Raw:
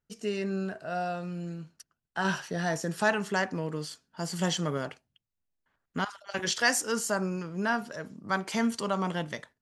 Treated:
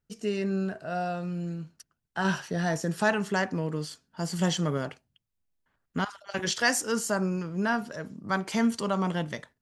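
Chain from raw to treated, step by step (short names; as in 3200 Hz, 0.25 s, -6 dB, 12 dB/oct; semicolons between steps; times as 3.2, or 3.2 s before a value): low shelf 300 Hz +5 dB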